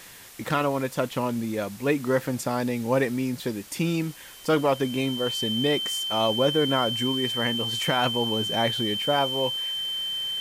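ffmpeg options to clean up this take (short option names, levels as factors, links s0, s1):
-af "bandreject=f=3100:w=30,afwtdn=0.005"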